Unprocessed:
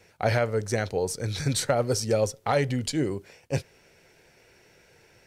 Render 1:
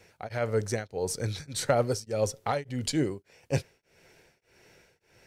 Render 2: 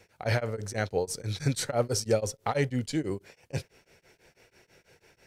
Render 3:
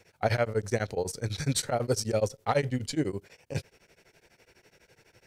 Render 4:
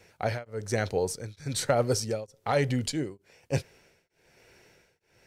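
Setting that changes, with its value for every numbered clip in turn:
tremolo of two beating tones, nulls at: 1.7 Hz, 6.1 Hz, 12 Hz, 1.1 Hz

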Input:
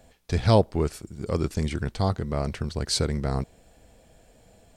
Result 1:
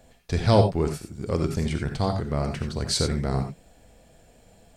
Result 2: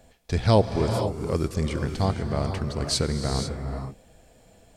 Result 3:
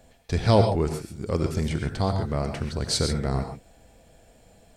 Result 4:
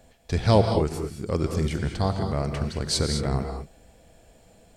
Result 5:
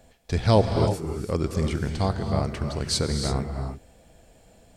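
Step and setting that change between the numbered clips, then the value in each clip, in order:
gated-style reverb, gate: 110 ms, 520 ms, 160 ms, 240 ms, 360 ms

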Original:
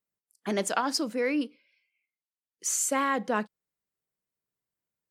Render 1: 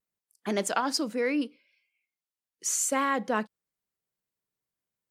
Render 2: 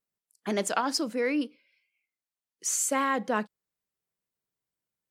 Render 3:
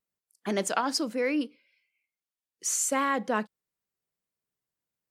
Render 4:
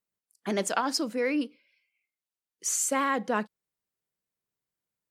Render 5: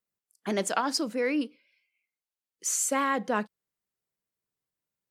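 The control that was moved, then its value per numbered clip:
vibrato, rate: 0.66 Hz, 2.2 Hz, 1 Hz, 16 Hz, 6.1 Hz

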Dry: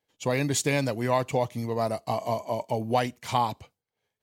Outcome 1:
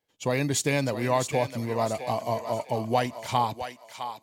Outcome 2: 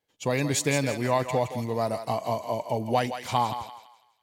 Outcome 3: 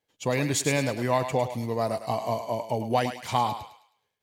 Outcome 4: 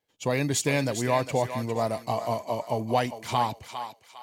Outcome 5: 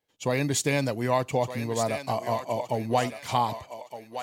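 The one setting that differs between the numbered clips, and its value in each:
thinning echo, time: 659 ms, 166 ms, 105 ms, 404 ms, 1215 ms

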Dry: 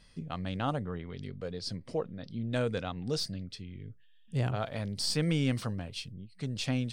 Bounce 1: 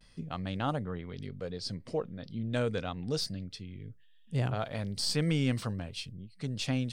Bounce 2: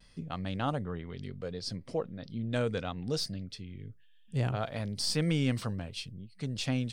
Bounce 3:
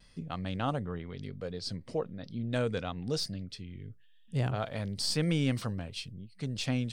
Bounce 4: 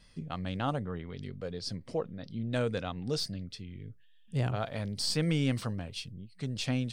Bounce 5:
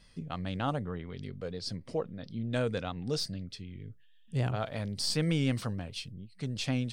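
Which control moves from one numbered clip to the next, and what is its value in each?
vibrato, rate: 0.32 Hz, 0.66 Hz, 0.98 Hz, 3.7 Hz, 6.6 Hz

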